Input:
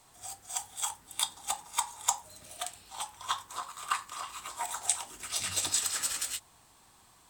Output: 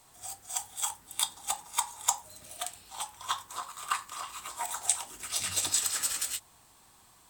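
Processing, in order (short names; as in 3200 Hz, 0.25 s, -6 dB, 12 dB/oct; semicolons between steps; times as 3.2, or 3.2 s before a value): high shelf 12000 Hz +6.5 dB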